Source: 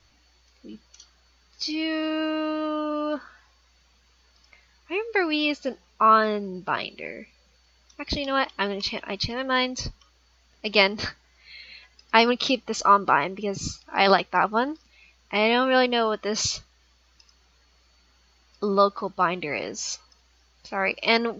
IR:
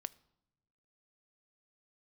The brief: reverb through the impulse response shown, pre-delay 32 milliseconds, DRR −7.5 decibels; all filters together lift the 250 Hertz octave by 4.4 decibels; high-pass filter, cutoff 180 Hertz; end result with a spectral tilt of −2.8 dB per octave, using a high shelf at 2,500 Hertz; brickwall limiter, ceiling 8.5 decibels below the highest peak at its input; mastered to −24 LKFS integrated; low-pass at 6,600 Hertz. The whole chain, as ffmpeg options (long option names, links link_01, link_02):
-filter_complex "[0:a]highpass=180,lowpass=6600,equalizer=frequency=250:width_type=o:gain=6.5,highshelf=frequency=2500:gain=7,alimiter=limit=-7dB:level=0:latency=1,asplit=2[link_01][link_02];[1:a]atrim=start_sample=2205,adelay=32[link_03];[link_02][link_03]afir=irnorm=-1:irlink=0,volume=10.5dB[link_04];[link_01][link_04]amix=inputs=2:normalize=0,volume=-9.5dB"